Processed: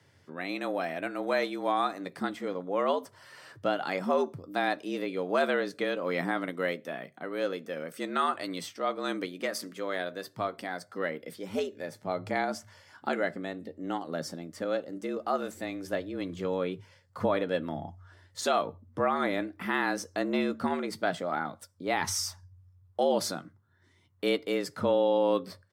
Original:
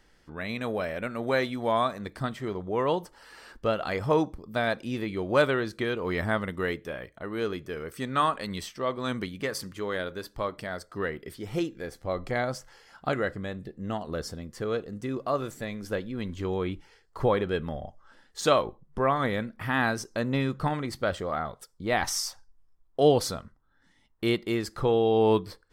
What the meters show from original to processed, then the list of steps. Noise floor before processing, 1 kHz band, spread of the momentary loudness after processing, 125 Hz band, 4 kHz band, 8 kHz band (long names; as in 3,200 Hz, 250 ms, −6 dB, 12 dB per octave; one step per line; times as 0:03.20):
−63 dBFS, −1.5 dB, 11 LU, −10.5 dB, −2.0 dB, −1.0 dB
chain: frequency shifter +87 Hz
double-tracking delay 13 ms −14 dB
brickwall limiter −14.5 dBFS, peak gain reduction 7.5 dB
level −1.5 dB